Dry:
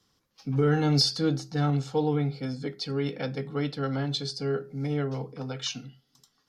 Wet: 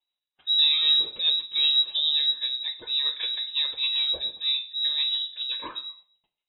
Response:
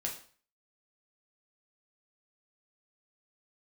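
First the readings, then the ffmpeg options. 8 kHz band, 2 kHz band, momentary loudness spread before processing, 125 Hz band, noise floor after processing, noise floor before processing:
below −40 dB, +1.5 dB, 11 LU, below −35 dB, below −85 dBFS, −73 dBFS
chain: -filter_complex "[0:a]agate=range=-18dB:threshold=-57dB:ratio=16:detection=peak,equalizer=frequency=110:width=2:gain=12.5,acrossover=split=500[link_01][link_02];[link_02]acompressor=threshold=-26dB:ratio=2.5[link_03];[link_01][link_03]amix=inputs=2:normalize=0,tremolo=f=7.8:d=0.34,asplit=2[link_04][link_05];[1:a]atrim=start_sample=2205,afade=type=out:start_time=0.4:duration=0.01,atrim=end_sample=18081[link_06];[link_05][link_06]afir=irnorm=-1:irlink=0,volume=-1.5dB[link_07];[link_04][link_07]amix=inputs=2:normalize=0,lowpass=frequency=3400:width_type=q:width=0.5098,lowpass=frequency=3400:width_type=q:width=0.6013,lowpass=frequency=3400:width_type=q:width=0.9,lowpass=frequency=3400:width_type=q:width=2.563,afreqshift=-4000,volume=-4dB"

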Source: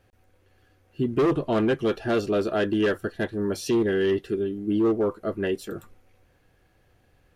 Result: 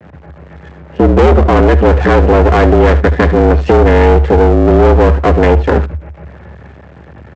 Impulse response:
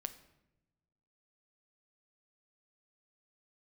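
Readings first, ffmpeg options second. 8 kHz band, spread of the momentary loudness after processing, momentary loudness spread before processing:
can't be measured, 5 LU, 7 LU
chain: -filter_complex "[0:a]lowpass=frequency=1900:width=0.5412,lowpass=frequency=1900:width=1.3066,adynamicequalizer=threshold=0.01:dfrequency=960:dqfactor=1:tfrequency=960:tqfactor=1:attack=5:release=100:ratio=0.375:range=3:mode=cutabove:tftype=bell,acompressor=threshold=-28dB:ratio=2.5,aresample=16000,aeval=exprs='max(val(0),0)':channel_layout=same,aresample=44100,afreqshift=70,asoftclip=type=tanh:threshold=-29dB,asplit=2[link_01][link_02];[link_02]aecho=0:1:74:0.15[link_03];[link_01][link_03]amix=inputs=2:normalize=0,alimiter=level_in=31.5dB:limit=-1dB:release=50:level=0:latency=1,volume=-1dB"

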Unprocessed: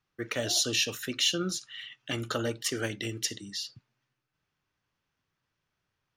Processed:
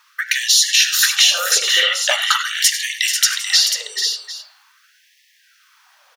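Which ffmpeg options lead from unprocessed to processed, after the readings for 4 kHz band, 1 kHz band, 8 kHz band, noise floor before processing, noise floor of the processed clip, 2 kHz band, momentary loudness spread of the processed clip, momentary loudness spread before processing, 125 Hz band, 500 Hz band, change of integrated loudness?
+17.0 dB, +16.5 dB, +17.5 dB, −84 dBFS, −57 dBFS, +18.5 dB, 9 LU, 11 LU, below −40 dB, +3.5 dB, +16.0 dB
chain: -filter_complex "[0:a]equalizer=frequency=2500:width=1.5:gain=-3,bandreject=frequency=347.7:width_type=h:width=4,bandreject=frequency=695.4:width_type=h:width=4,bandreject=frequency=1043.1:width_type=h:width=4,bandreject=frequency=1390.8:width_type=h:width=4,bandreject=frequency=1738.5:width_type=h:width=4,bandreject=frequency=2086.2:width_type=h:width=4,bandreject=frequency=2433.9:width_type=h:width=4,bandreject=frequency=2781.6:width_type=h:width=4,bandreject=frequency=3129.3:width_type=h:width=4,bandreject=frequency=3477:width_type=h:width=4,bandreject=frequency=3824.7:width_type=h:width=4,bandreject=frequency=4172.4:width_type=h:width=4,bandreject=frequency=4520.1:width_type=h:width=4,acompressor=threshold=-40dB:ratio=12,apsyclip=35.5dB,asplit=2[link_01][link_02];[link_02]aecho=0:1:79|97|435|491|751:0.106|0.178|0.335|0.422|0.133[link_03];[link_01][link_03]amix=inputs=2:normalize=0,afftfilt=real='re*gte(b*sr/1024,380*pow(1700/380,0.5+0.5*sin(2*PI*0.43*pts/sr)))':imag='im*gte(b*sr/1024,380*pow(1700/380,0.5+0.5*sin(2*PI*0.43*pts/sr)))':win_size=1024:overlap=0.75,volume=-5dB"

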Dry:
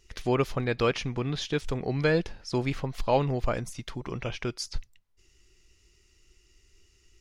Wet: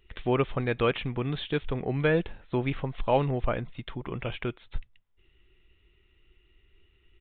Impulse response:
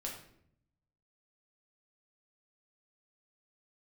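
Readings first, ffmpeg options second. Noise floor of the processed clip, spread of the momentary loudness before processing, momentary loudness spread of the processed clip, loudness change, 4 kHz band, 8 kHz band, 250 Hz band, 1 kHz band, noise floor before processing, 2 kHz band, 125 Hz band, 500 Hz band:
−66 dBFS, 11 LU, 12 LU, 0.0 dB, −2.5 dB, below −35 dB, 0.0 dB, 0.0 dB, −64 dBFS, 0.0 dB, 0.0 dB, 0.0 dB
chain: -af "aresample=8000,aresample=44100"

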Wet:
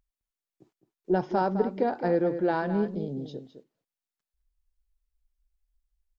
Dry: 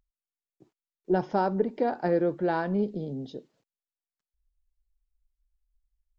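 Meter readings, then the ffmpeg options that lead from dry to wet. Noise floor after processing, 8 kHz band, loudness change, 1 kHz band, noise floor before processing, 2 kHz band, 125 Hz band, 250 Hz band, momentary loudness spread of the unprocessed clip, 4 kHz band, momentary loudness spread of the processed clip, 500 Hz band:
below −85 dBFS, can't be measured, +0.5 dB, +0.5 dB, below −85 dBFS, +0.5 dB, 0.0 dB, +0.5 dB, 11 LU, 0.0 dB, 11 LU, +0.5 dB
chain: -filter_complex "[0:a]asplit=2[link_01][link_02];[link_02]adelay=209.9,volume=-10dB,highshelf=frequency=4000:gain=-4.72[link_03];[link_01][link_03]amix=inputs=2:normalize=0"

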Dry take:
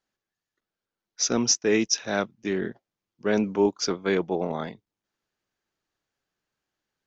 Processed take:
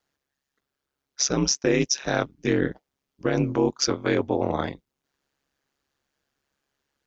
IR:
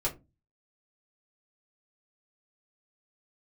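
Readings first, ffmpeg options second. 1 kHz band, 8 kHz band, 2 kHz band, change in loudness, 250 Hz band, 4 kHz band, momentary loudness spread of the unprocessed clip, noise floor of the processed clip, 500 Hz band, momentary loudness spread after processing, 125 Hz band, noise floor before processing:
+2.0 dB, can't be measured, +1.5 dB, +1.0 dB, +1.5 dB, +1.0 dB, 10 LU, −84 dBFS, +0.5 dB, 8 LU, +7.5 dB, below −85 dBFS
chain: -af "alimiter=limit=-17.5dB:level=0:latency=1:release=135,aeval=exprs='val(0)*sin(2*PI*69*n/s)':channel_layout=same,volume=8dB"

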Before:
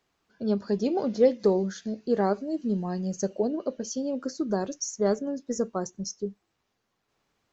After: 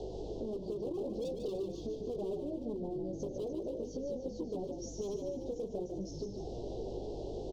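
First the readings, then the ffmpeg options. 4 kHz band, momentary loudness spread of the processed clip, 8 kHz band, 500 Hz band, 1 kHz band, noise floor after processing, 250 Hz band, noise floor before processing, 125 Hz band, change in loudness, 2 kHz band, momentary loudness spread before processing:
−11.5 dB, 4 LU, can't be measured, −10.0 dB, −16.0 dB, −45 dBFS, −11.5 dB, −78 dBFS, −9.0 dB, −11.5 dB, below −25 dB, 11 LU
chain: -filter_complex "[0:a]aeval=exprs='val(0)+0.5*0.0188*sgn(val(0))':channel_layout=same,equalizer=frequency=150:width=0.4:gain=-8.5,flanger=delay=16:depth=3.6:speed=0.48,lowpass=frequency=5800:width=0.5412,lowpass=frequency=5800:width=1.3066,aeval=exprs='val(0)+0.00251*(sin(2*PI*50*n/s)+sin(2*PI*2*50*n/s)/2+sin(2*PI*3*50*n/s)/3+sin(2*PI*4*50*n/s)/4+sin(2*PI*5*50*n/s)/5)':channel_layout=same,firequalizer=gain_entry='entry(260,0);entry(380,12);entry(1100,-17)':delay=0.05:min_phase=1,volume=28.5dB,asoftclip=hard,volume=-28.5dB,acompressor=threshold=-40dB:ratio=6,asuperstop=centerf=1700:order=8:qfactor=0.72,acrossover=split=130[link_01][link_02];[link_02]acompressor=threshold=-46dB:ratio=2[link_03];[link_01][link_03]amix=inputs=2:normalize=0,asplit=8[link_04][link_05][link_06][link_07][link_08][link_09][link_10][link_11];[link_05]adelay=148,afreqshift=-37,volume=-6dB[link_12];[link_06]adelay=296,afreqshift=-74,volume=-11dB[link_13];[link_07]adelay=444,afreqshift=-111,volume=-16.1dB[link_14];[link_08]adelay=592,afreqshift=-148,volume=-21.1dB[link_15];[link_09]adelay=740,afreqshift=-185,volume=-26.1dB[link_16];[link_10]adelay=888,afreqshift=-222,volume=-31.2dB[link_17];[link_11]adelay=1036,afreqshift=-259,volume=-36.2dB[link_18];[link_04][link_12][link_13][link_14][link_15][link_16][link_17][link_18]amix=inputs=8:normalize=0,volume=6dB"

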